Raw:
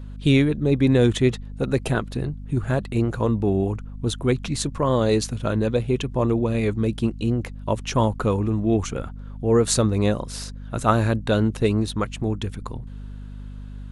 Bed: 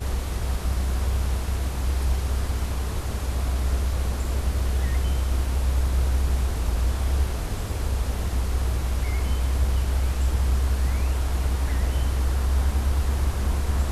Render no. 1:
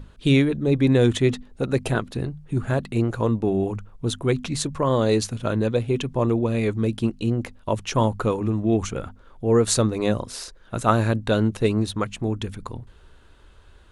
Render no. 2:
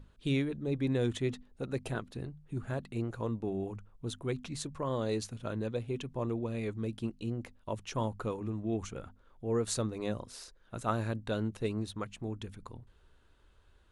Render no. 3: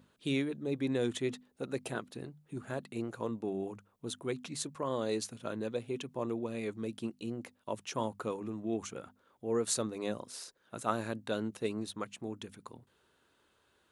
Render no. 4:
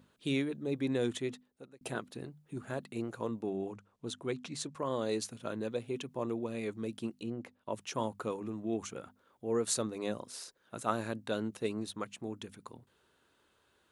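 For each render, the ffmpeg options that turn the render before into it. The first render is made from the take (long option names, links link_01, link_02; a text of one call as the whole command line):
ffmpeg -i in.wav -af "bandreject=frequency=50:width_type=h:width=6,bandreject=frequency=100:width_type=h:width=6,bandreject=frequency=150:width_type=h:width=6,bandreject=frequency=200:width_type=h:width=6,bandreject=frequency=250:width_type=h:width=6" out.wav
ffmpeg -i in.wav -af "volume=-13dB" out.wav
ffmpeg -i in.wav -af "highpass=190,highshelf=frequency=7800:gain=7" out.wav
ffmpeg -i in.wav -filter_complex "[0:a]asettb=1/sr,asplit=3[link_01][link_02][link_03];[link_01]atrim=end=3.474[link_04];[link_02]atrim=start=3.47:end=4.75,asetpts=PTS-STARTPTS,afade=type=in:duration=0.004:curve=qsin,afade=type=out:start_time=1.276:duration=0.004:curve=qsin,lowpass=8000[link_05];[link_03]atrim=start=4.746[link_06];[link_04][link_05]acrossfade=duration=0.004:curve1=hsin:curve2=qsin[link_07];[link_07][link_06]acrossfade=duration=0.004:curve1=qsin:curve2=hsin,asettb=1/sr,asplit=3[link_08][link_09][link_10];[link_08]atrim=end=7.234[link_11];[link_09]atrim=start=7.23:end=7.73,asetpts=PTS-STARTPTS,afade=type=in:duration=0.004:curve=qsin,afade=type=out:start_time=0.496:duration=0.004:curve=qsin,highshelf=frequency=4500:gain=-11.5[link_12];[link_10]atrim=start=7.726[link_13];[link_11][link_12]acrossfade=duration=0.004:curve1=hsin:curve2=qsin[link_14];[link_14][link_13]acrossfade=duration=0.004:curve1=qsin:curve2=hsin,asplit=2[link_15][link_16];[link_15]atrim=end=1.81,asetpts=PTS-STARTPTS,afade=type=out:start_time=1.08:duration=0.73[link_17];[link_16]atrim=start=1.81,asetpts=PTS-STARTPTS,afade=type=in:duration=0.004:curve=hsin[link_18];[link_17][link_18]concat=n=2:v=0:a=1" out.wav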